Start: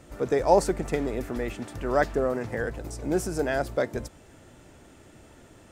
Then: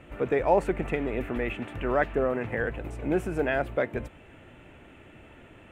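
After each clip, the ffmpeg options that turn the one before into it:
ffmpeg -i in.wav -filter_complex "[0:a]highshelf=frequency=3700:width_type=q:width=3:gain=-11.5,asplit=2[link_01][link_02];[link_02]alimiter=limit=-17dB:level=0:latency=1:release=272,volume=2dB[link_03];[link_01][link_03]amix=inputs=2:normalize=0,volume=-6.5dB" out.wav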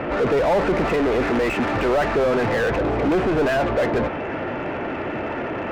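ffmpeg -i in.wav -filter_complex "[0:a]asoftclip=type=tanh:threshold=-18.5dB,adynamicsmooth=sensitivity=8:basefreq=2200,asplit=2[link_01][link_02];[link_02]highpass=frequency=720:poles=1,volume=35dB,asoftclip=type=tanh:threshold=-18.5dB[link_03];[link_01][link_03]amix=inputs=2:normalize=0,lowpass=frequency=1100:poles=1,volume=-6dB,volume=6dB" out.wav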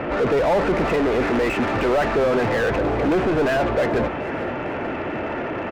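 ffmpeg -i in.wav -af "aecho=1:1:442|884|1326|1768|2210:0.168|0.0839|0.042|0.021|0.0105" out.wav

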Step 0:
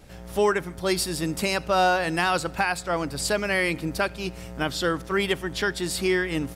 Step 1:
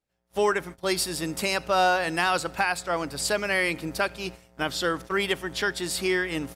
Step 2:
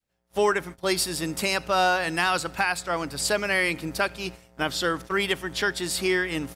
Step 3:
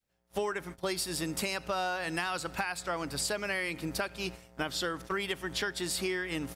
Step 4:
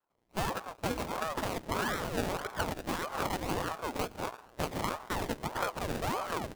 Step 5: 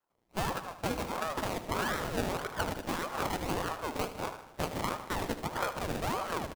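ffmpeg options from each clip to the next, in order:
ffmpeg -i in.wav -af "lowshelf=frequency=260:gain=-7.5,agate=range=-33dB:threshold=-38dB:ratio=16:detection=peak" out.wav
ffmpeg -i in.wav -af "adynamicequalizer=threshold=0.0126:dfrequency=560:dqfactor=1:tfrequency=560:tqfactor=1:attack=5:release=100:ratio=0.375:range=2:mode=cutabove:tftype=bell,volume=1.5dB" out.wav
ffmpeg -i in.wav -af "acompressor=threshold=-29dB:ratio=6,volume=-1dB" out.wav
ffmpeg -i in.wav -af "acrusher=samples=33:mix=1:aa=0.000001:lfo=1:lforange=19.8:lforate=1.9,aeval=exprs='val(0)*sin(2*PI*540*n/s+540*0.8/1.6*sin(2*PI*1.6*n/s))':channel_layout=same,volume=2.5dB" out.wav
ffmpeg -i in.wav -af "aecho=1:1:77|154|231|308|385|462:0.237|0.133|0.0744|0.0416|0.0233|0.0131" out.wav

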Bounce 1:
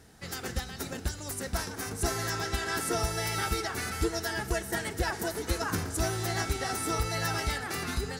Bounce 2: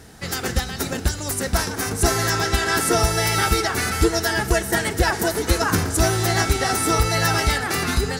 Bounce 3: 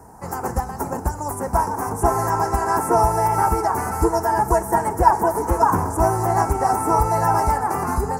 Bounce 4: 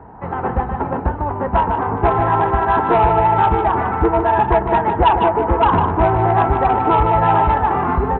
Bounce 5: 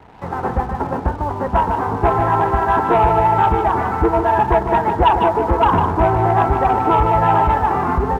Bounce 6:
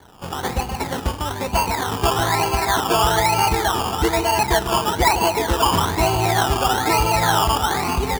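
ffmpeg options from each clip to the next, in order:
ffmpeg -i in.wav -af "acontrast=29,volume=6dB" out.wav
ffmpeg -i in.wav -filter_complex "[0:a]acrossover=split=120|6400[link_01][link_02][link_03];[link_02]lowpass=frequency=940:width_type=q:width=6.7[link_04];[link_03]alimiter=limit=-21dB:level=0:latency=1:release=137[link_05];[link_01][link_04][link_05]amix=inputs=3:normalize=0,volume=-2dB" out.wav
ffmpeg -i in.wav -af "aresample=8000,asoftclip=type=tanh:threshold=-11.5dB,aresample=44100,aecho=1:1:151:0.422,volume=5dB" out.wav
ffmpeg -i in.wav -af "aeval=exprs='sgn(val(0))*max(abs(val(0))-0.00631,0)':channel_layout=same" out.wav
ffmpeg -i in.wav -af "acrusher=samples=17:mix=1:aa=0.000001:lfo=1:lforange=10.2:lforate=1.1,volume=-3.5dB" out.wav

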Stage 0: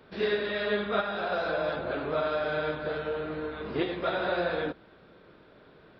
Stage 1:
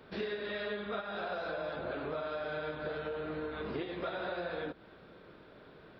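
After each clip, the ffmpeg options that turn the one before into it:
ffmpeg -i in.wav -af "acompressor=threshold=-35dB:ratio=6" out.wav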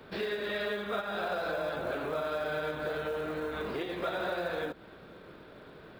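ffmpeg -i in.wav -filter_complex "[0:a]acrossover=split=370[link_01][link_02];[link_01]alimiter=level_in=18dB:limit=-24dB:level=0:latency=1,volume=-18dB[link_03];[link_03][link_02]amix=inputs=2:normalize=0,acrusher=bits=7:mode=log:mix=0:aa=0.000001,volume=4.5dB" out.wav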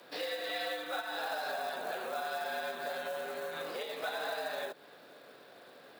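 ffmpeg -i in.wav -af "bass=frequency=250:gain=-7,treble=frequency=4000:gain=12,afreqshift=97,volume=-3.5dB" out.wav

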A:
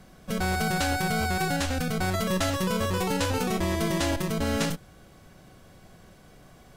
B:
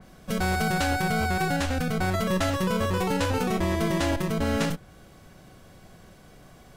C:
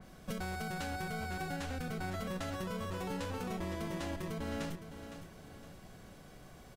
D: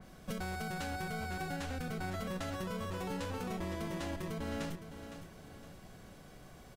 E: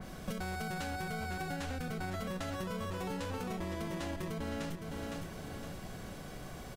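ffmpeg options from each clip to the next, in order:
ffmpeg -i in.wav -af "adynamicequalizer=threshold=0.00501:dfrequency=3100:dqfactor=0.7:tfrequency=3100:tqfactor=0.7:attack=5:release=100:ratio=0.375:range=2.5:mode=cutabove:tftype=highshelf,volume=1.5dB" out.wav
ffmpeg -i in.wav -filter_complex "[0:a]acompressor=threshold=-32dB:ratio=10,asplit=2[link_01][link_02];[link_02]aecho=0:1:511|1022|1533|2044:0.299|0.116|0.0454|0.0177[link_03];[link_01][link_03]amix=inputs=2:normalize=0,volume=-4dB" out.wav
ffmpeg -i in.wav -af "asoftclip=type=hard:threshold=-30dB" out.wav
ffmpeg -i in.wav -af "acompressor=threshold=-44dB:ratio=6,volume=8.5dB" out.wav

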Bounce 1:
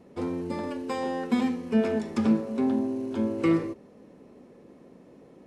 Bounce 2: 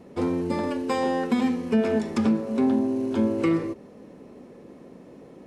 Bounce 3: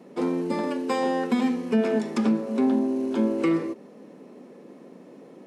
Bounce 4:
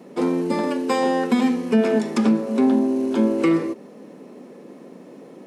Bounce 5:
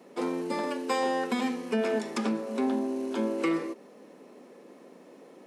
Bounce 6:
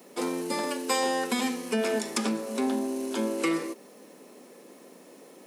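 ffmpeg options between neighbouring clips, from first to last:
ffmpeg -i in.wav -af "alimiter=limit=-18.5dB:level=0:latency=1:release=273,volume=5.5dB" out.wav
ffmpeg -i in.wav -af "highpass=frequency=170:width=0.5412,highpass=frequency=170:width=1.3066" out.wav
ffmpeg -i in.wav -af "highshelf=frequency=7400:gain=4,volume=4.5dB" out.wav
ffmpeg -i in.wav -af "highpass=frequency=500:poles=1,volume=-4.5dB" out.wav
ffmpeg -i in.wav -af "aemphasis=mode=production:type=75kf" out.wav

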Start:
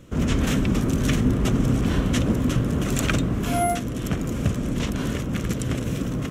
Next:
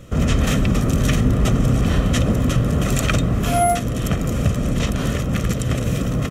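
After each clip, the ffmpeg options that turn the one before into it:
ffmpeg -i in.wav -filter_complex "[0:a]aecho=1:1:1.6:0.4,asplit=2[link_01][link_02];[link_02]alimiter=limit=-17.5dB:level=0:latency=1:release=167,volume=-0.5dB[link_03];[link_01][link_03]amix=inputs=2:normalize=0" out.wav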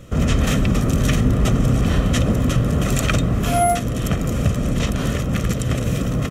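ffmpeg -i in.wav -af anull out.wav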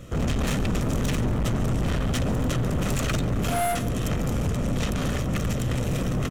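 ffmpeg -i in.wav -af "aeval=exprs='(tanh(12.6*val(0)+0.35)-tanh(0.35))/12.6':channel_layout=same,aecho=1:1:141:0.141" out.wav

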